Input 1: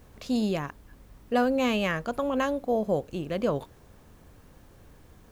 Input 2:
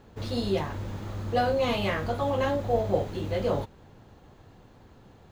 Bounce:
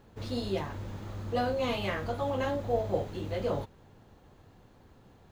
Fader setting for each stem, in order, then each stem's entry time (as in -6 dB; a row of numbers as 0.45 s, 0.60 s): -16.0 dB, -4.5 dB; 0.00 s, 0.00 s